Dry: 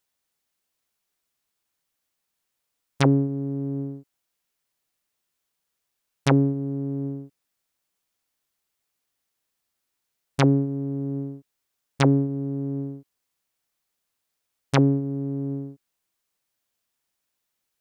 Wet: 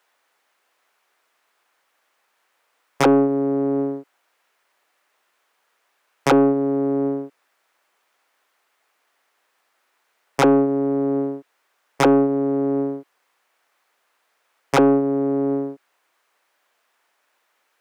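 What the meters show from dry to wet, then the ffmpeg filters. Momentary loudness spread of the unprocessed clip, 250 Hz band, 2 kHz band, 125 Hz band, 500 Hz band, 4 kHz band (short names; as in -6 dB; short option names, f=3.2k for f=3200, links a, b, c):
15 LU, +5.0 dB, +5.0 dB, -7.5 dB, +11.0 dB, +2.0 dB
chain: -filter_complex "[0:a]acrossover=split=310 2200:gain=0.2 1 0.2[a][b][c];[a][b][c]amix=inputs=3:normalize=0,asplit=2[d][e];[e]highpass=f=720:p=1,volume=20dB,asoftclip=type=tanh:threshold=-8dB[f];[d][f]amix=inputs=2:normalize=0,lowpass=f=7.1k:p=1,volume=-6dB,asoftclip=type=tanh:threshold=-17dB,volume=8dB"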